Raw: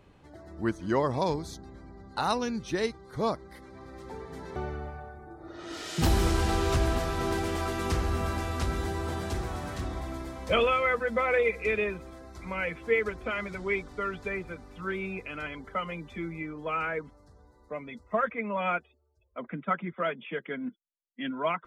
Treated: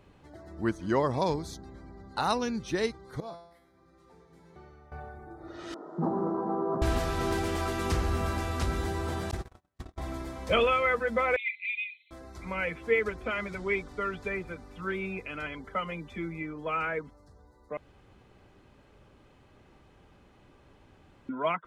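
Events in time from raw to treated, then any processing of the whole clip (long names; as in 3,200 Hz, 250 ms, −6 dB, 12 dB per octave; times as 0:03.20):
0:03.20–0:04.92: tuned comb filter 170 Hz, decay 0.71 s, mix 90%
0:05.74–0:06.82: elliptic band-pass filter 170–1,100 Hz
0:09.31–0:09.98: noise gate −31 dBFS, range −48 dB
0:11.36–0:12.11: linear-phase brick-wall band-pass 2,000–4,200 Hz
0:17.77–0:21.29: fill with room tone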